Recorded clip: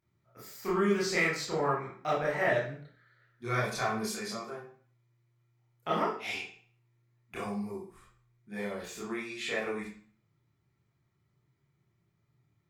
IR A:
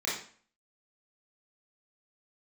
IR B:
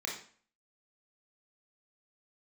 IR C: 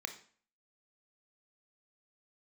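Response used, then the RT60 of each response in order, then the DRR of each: A; 0.45, 0.45, 0.45 seconds; −7.5, −2.0, 6.5 decibels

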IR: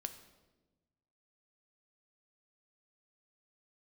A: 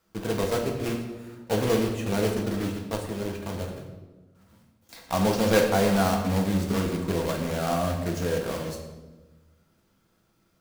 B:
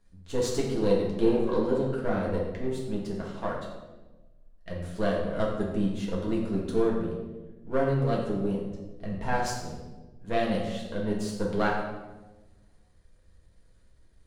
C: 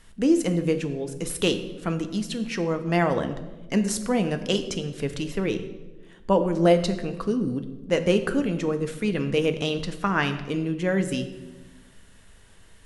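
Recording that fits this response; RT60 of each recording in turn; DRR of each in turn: C; 1.2, 1.1, 1.2 seconds; 0.5, −3.5, 8.0 decibels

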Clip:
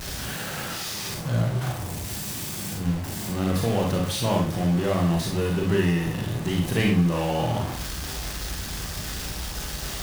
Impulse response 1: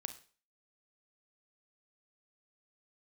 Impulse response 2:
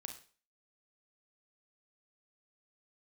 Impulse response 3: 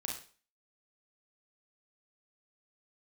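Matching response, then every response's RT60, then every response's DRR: 3; 0.40, 0.40, 0.40 seconds; 9.0, 4.5, −1.0 decibels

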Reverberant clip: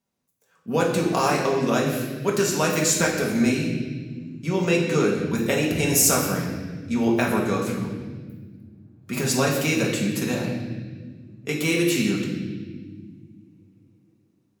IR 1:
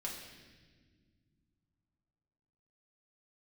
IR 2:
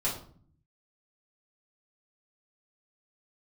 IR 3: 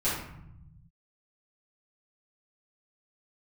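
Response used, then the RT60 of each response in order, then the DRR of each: 1; non-exponential decay, 0.50 s, 0.75 s; −3.5, −8.0, −12.5 decibels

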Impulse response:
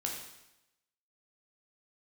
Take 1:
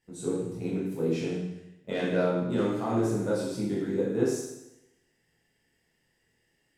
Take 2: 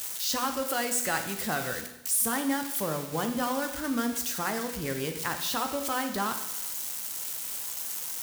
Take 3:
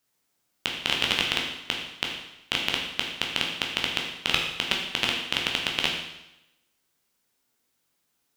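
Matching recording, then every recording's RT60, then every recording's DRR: 3; 0.90, 0.90, 0.90 seconds; −7.5, 5.5, −1.0 decibels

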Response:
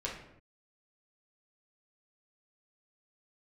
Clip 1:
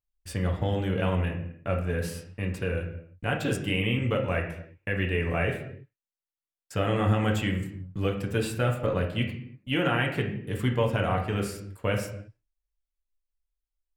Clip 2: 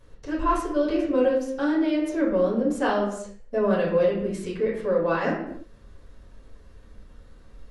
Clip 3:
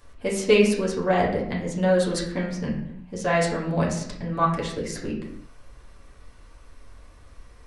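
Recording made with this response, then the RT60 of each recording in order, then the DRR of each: 3; 0.75, 0.75, 0.75 seconds; 0.0, −10.5, −5.0 decibels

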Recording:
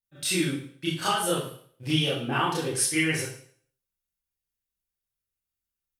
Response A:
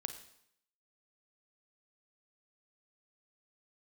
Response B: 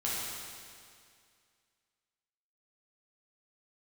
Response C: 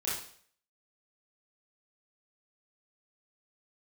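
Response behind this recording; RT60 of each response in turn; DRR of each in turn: C; 0.70, 2.2, 0.55 seconds; 8.0, −7.5, −8.5 decibels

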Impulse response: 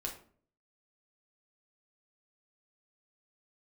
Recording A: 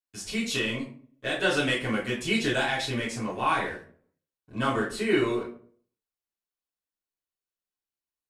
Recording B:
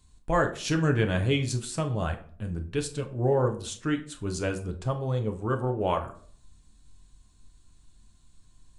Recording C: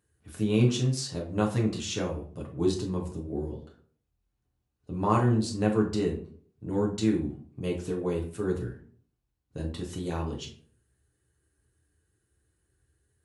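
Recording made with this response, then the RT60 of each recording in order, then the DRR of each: C; 0.50, 0.50, 0.50 seconds; −9.5, 4.5, −1.5 decibels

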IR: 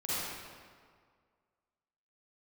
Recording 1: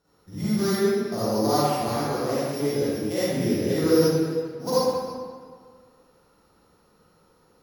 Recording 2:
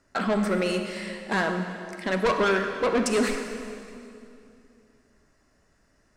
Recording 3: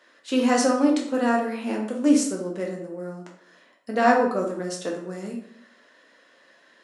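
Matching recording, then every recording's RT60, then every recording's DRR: 1; 1.9, 2.6, 0.65 seconds; −11.5, 5.5, −1.0 decibels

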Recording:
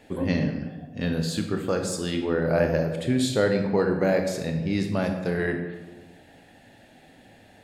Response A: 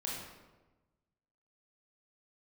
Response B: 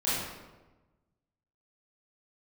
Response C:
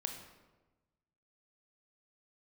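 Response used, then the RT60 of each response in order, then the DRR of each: C; 1.2, 1.2, 1.2 seconds; −4.5, −11.0, 4.0 decibels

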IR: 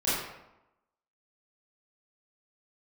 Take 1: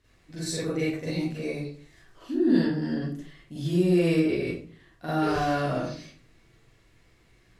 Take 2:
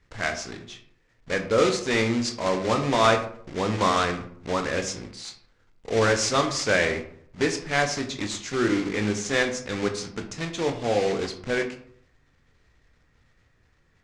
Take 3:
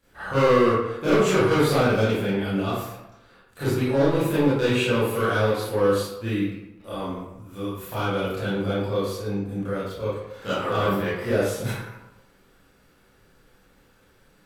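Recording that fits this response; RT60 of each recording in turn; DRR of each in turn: 3; 0.45, 0.60, 0.90 seconds; −9.0, 4.5, −12.0 decibels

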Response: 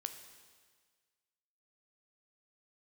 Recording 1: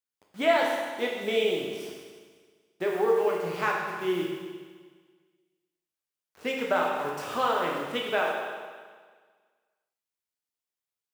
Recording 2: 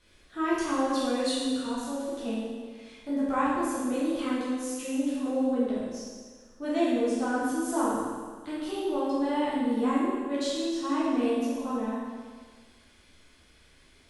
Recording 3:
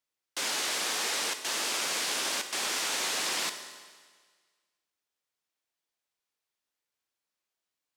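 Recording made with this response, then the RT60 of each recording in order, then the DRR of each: 3; 1.6, 1.6, 1.6 seconds; −2.0, −9.5, 7.0 decibels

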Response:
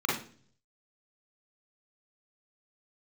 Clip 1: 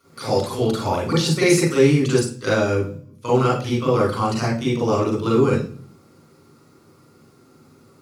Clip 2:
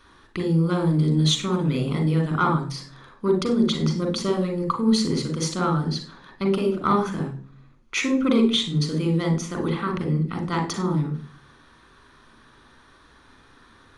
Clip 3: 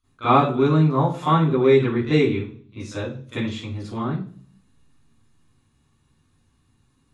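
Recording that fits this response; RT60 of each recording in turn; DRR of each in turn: 1; 0.45, 0.45, 0.45 seconds; −5.5, 4.0, −13.5 decibels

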